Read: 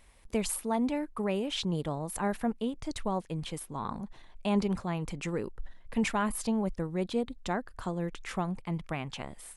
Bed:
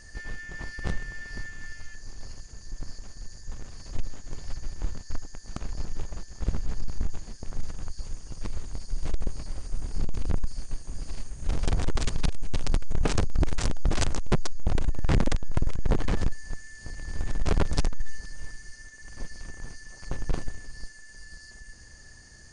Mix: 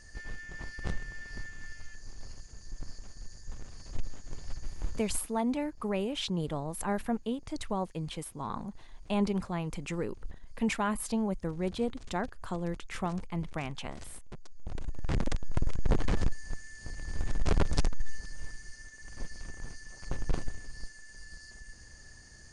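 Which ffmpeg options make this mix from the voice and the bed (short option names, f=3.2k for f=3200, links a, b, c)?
-filter_complex "[0:a]adelay=4650,volume=-1dB[a];[1:a]volume=15.5dB,afade=t=out:st=4.97:d=0.45:silence=0.125893,afade=t=in:st=14.44:d=1.39:silence=0.1[b];[a][b]amix=inputs=2:normalize=0"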